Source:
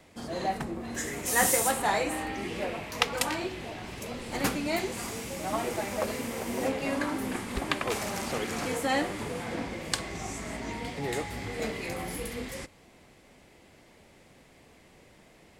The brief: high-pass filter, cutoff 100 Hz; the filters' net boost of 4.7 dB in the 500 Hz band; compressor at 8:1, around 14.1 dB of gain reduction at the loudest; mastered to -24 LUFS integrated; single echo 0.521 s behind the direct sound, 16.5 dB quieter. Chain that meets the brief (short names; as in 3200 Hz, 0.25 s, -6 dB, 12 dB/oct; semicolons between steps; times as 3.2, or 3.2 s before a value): HPF 100 Hz; bell 500 Hz +5.5 dB; compressor 8:1, threshold -34 dBFS; echo 0.521 s -16.5 dB; gain +14 dB